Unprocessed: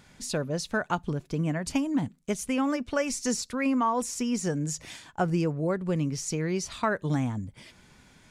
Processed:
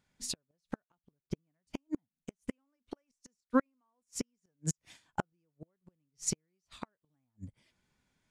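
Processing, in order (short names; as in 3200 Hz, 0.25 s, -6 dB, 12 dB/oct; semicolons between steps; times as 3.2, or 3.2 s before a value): flipped gate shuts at -22 dBFS, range -31 dB; upward expander 2.5:1, over -48 dBFS; gain +7.5 dB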